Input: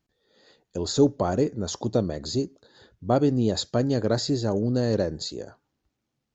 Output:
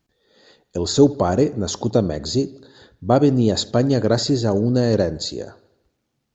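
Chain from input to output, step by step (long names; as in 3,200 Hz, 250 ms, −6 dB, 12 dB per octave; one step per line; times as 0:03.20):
delay with a low-pass on its return 79 ms, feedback 54%, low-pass 3,400 Hz, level −20 dB
level +6 dB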